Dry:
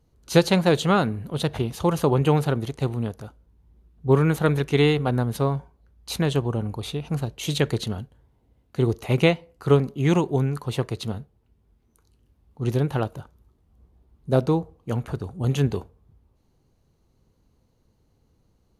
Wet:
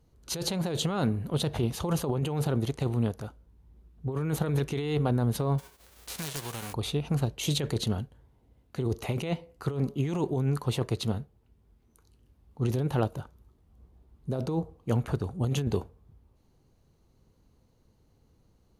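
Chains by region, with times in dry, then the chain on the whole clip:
5.58–6.72 spectral whitening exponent 0.3 + wrapped overs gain 11.5 dB + compressor 2.5:1, threshold -39 dBFS
whole clip: dynamic EQ 1800 Hz, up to -4 dB, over -39 dBFS, Q 0.89; negative-ratio compressor -24 dBFS, ratio -1; gain -3 dB

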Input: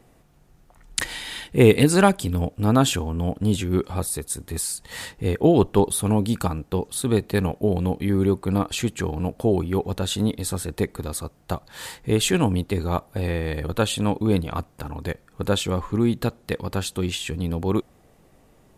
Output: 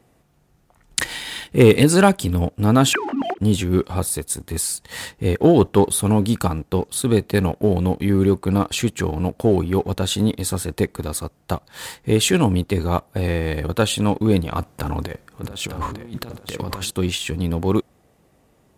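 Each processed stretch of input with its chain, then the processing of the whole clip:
2.93–3.38 sine-wave speech + bell 450 Hz -6 dB 0.7 oct + notches 50/100/150/200/250/300/350/400 Hz
14.6–16.91 negative-ratio compressor -33 dBFS + echo 0.901 s -8 dB
whole clip: sample leveller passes 1; HPF 46 Hz

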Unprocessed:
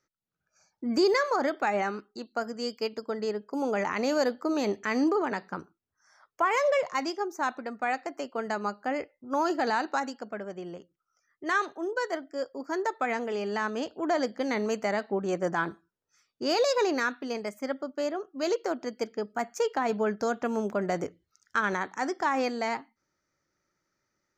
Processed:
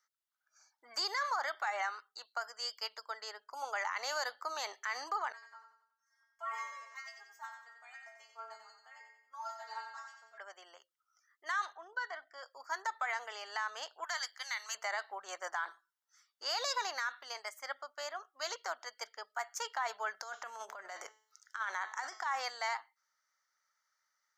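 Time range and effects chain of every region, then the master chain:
5.32–10.38 metallic resonator 220 Hz, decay 0.46 s, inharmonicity 0.002 + feedback echo 91 ms, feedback 44%, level -6 dB
11.73–12.43 LPF 3600 Hz + comb 2.7 ms, depth 37% + compressor 2.5:1, threshold -32 dBFS
14.04–14.75 HPF 1400 Hz + high shelf 5700 Hz +6.5 dB
20.14–22.26 low shelf 190 Hz +7.5 dB + de-hum 216.7 Hz, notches 35 + negative-ratio compressor -30 dBFS, ratio -0.5
whole clip: HPF 880 Hz 24 dB/oct; notch 2500 Hz, Q 5.2; limiter -25.5 dBFS

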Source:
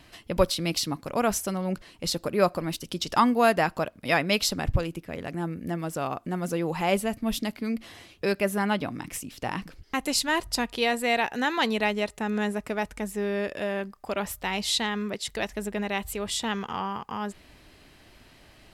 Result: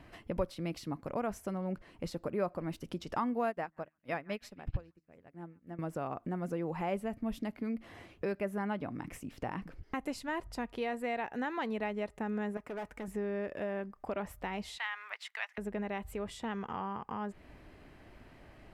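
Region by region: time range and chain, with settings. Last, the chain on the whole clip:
3.49–5.79 de-hum 78.53 Hz, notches 4 + delay with a stepping band-pass 0.137 s, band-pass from 1400 Hz, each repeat 0.7 oct, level -11.5 dB + upward expander 2.5:1, over -44 dBFS
12.57–13.08 overloaded stage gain 31 dB + low shelf 200 Hz -11.5 dB
14.78–15.58 G.711 law mismatch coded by A + HPF 860 Hz 24 dB/oct + bell 2400 Hz +12.5 dB 2.2 oct
whole clip: compressor 2:1, threshold -38 dBFS; EQ curve 630 Hz 0 dB, 2100 Hz -4 dB, 3800 Hz -14 dB

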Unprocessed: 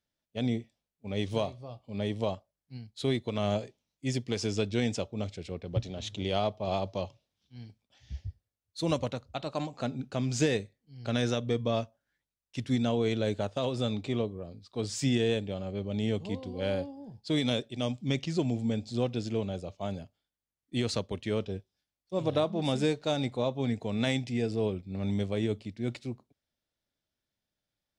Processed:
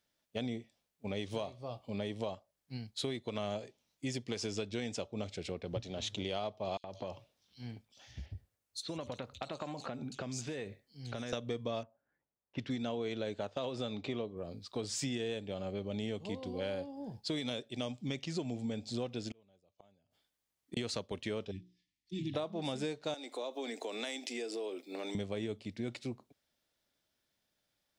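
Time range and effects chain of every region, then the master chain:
6.77–11.33 compressor 5:1, threshold -39 dBFS + bands offset in time highs, lows 70 ms, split 3700 Hz
11.83–14.37 low-pass opened by the level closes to 970 Hz, open at -27.5 dBFS + Bessel low-pass 6000 Hz + low shelf 61 Hz -10 dB
19.31–20.77 notch 1400 Hz, Q 25 + flipped gate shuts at -34 dBFS, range -37 dB
21.51–22.34 brick-wall FIR band-stop 360–1700 Hz + air absorption 75 m + notches 60/120/180/240/300/360/420/480 Hz
23.14–25.15 steep high-pass 270 Hz 48 dB/oct + high shelf 5700 Hz +11 dB + compressor 2.5:1, threshold -41 dBFS
whole clip: low shelf 190 Hz -8.5 dB; compressor 4:1, threshold -43 dBFS; gain +6.5 dB

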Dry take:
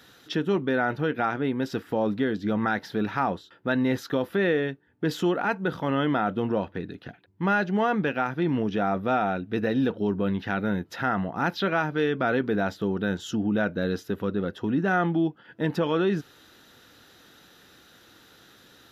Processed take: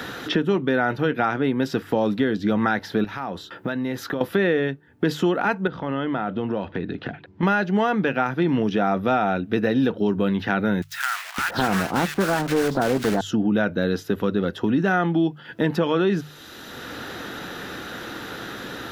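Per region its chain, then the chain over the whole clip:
3.04–4.21 high shelf 11000 Hz +6.5 dB + compressor 3:1, threshold -39 dBFS
5.67–7.43 air absorption 170 m + compressor 2:1, threshold -38 dBFS
10.82–13.21 block floating point 3-bit + bands offset in time highs, lows 0.56 s, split 1400 Hz + Doppler distortion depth 0.31 ms
whole clip: notches 50/100/150 Hz; three-band squash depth 70%; gain +4 dB

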